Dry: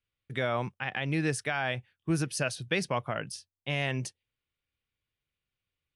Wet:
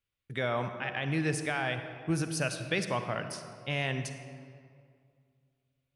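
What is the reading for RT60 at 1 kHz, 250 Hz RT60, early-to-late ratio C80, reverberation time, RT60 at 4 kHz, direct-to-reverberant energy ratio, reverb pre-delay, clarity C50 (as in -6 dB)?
2.2 s, 2.5 s, 9.0 dB, 2.2 s, 1.3 s, 8.0 dB, 40 ms, 8.0 dB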